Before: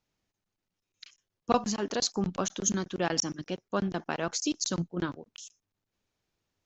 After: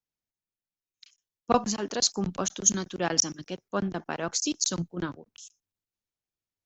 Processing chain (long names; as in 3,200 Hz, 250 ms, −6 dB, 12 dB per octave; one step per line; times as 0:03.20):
high-shelf EQ 5,200 Hz +7 dB
multiband upward and downward expander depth 40%